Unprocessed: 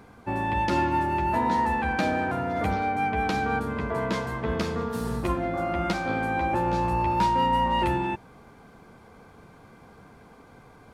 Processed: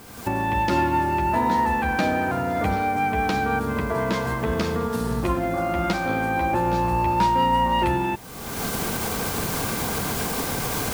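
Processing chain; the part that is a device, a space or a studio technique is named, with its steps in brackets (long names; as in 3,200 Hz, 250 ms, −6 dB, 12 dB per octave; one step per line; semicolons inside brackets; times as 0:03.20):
cheap recorder with automatic gain (white noise bed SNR 26 dB; camcorder AGC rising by 37 dB per second)
level +3 dB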